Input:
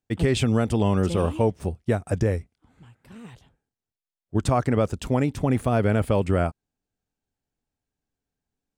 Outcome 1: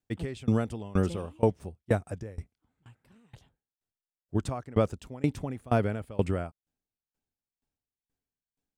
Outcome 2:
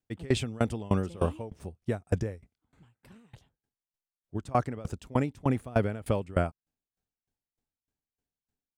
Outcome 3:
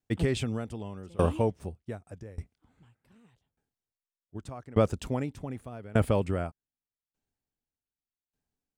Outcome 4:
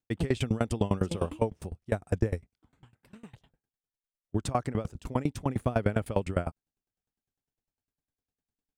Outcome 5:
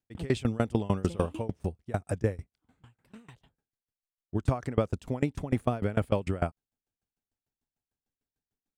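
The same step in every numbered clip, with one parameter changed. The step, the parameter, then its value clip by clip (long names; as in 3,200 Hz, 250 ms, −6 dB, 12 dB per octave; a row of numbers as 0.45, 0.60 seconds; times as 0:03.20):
tremolo with a ramp in dB, speed: 2.1, 3.3, 0.84, 9.9, 6.7 Hertz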